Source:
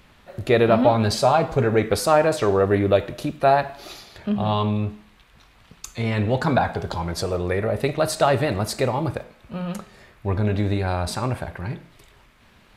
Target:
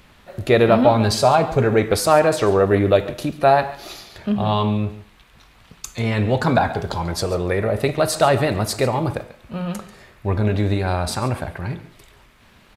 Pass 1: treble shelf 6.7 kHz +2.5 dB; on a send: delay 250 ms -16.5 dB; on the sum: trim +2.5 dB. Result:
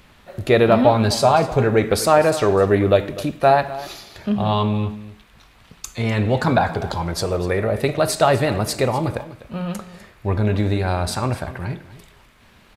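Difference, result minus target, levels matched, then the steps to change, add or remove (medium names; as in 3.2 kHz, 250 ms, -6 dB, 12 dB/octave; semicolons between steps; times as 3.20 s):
echo 111 ms late
change: delay 139 ms -16.5 dB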